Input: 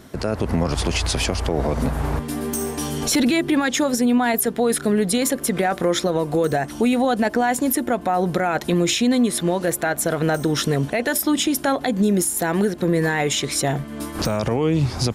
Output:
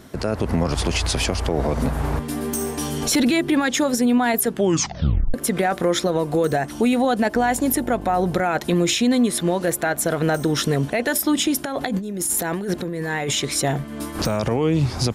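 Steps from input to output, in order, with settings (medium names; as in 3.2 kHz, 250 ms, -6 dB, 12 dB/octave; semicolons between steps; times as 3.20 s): 4.49 s: tape stop 0.85 s; 7.34–8.40 s: mains buzz 50 Hz, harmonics 18, -36 dBFS -4 dB/octave; 11.65–13.34 s: compressor with a negative ratio -25 dBFS, ratio -1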